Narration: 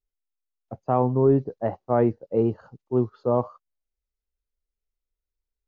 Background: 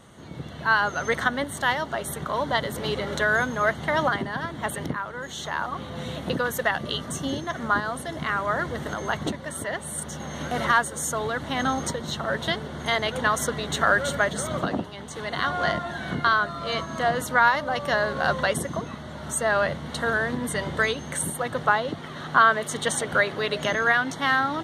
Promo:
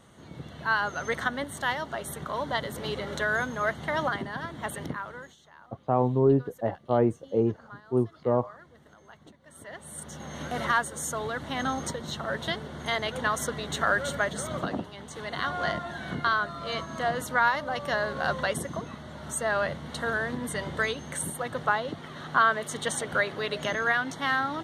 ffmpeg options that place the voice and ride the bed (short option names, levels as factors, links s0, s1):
-filter_complex "[0:a]adelay=5000,volume=0.75[s0];[1:a]volume=5.62,afade=t=out:st=5.12:d=0.24:silence=0.105925,afade=t=in:st=9.4:d=0.97:silence=0.1[s1];[s0][s1]amix=inputs=2:normalize=0"